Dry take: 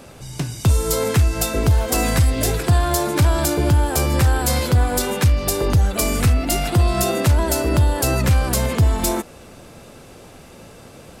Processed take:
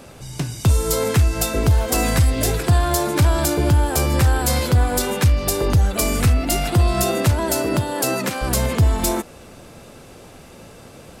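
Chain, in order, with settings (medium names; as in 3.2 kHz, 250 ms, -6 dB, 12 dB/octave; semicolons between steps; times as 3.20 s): 7.30–8.41 s: high-pass 70 Hz -> 230 Hz 24 dB/octave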